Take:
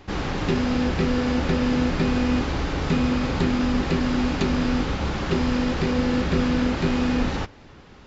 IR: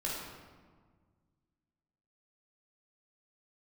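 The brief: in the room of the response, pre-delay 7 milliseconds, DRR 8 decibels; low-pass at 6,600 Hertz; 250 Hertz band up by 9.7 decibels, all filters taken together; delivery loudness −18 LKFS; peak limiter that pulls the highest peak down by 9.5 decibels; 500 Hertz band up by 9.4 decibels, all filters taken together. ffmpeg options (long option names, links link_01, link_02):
-filter_complex "[0:a]lowpass=6600,equalizer=frequency=250:width_type=o:gain=8.5,equalizer=frequency=500:width_type=o:gain=8.5,alimiter=limit=-12dB:level=0:latency=1,asplit=2[link_01][link_02];[1:a]atrim=start_sample=2205,adelay=7[link_03];[link_02][link_03]afir=irnorm=-1:irlink=0,volume=-12dB[link_04];[link_01][link_04]amix=inputs=2:normalize=0,volume=2dB"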